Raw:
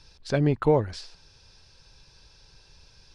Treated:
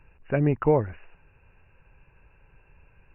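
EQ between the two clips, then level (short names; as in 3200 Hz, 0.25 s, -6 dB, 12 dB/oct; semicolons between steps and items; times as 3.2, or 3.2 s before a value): brick-wall FIR low-pass 2900 Hz; 0.0 dB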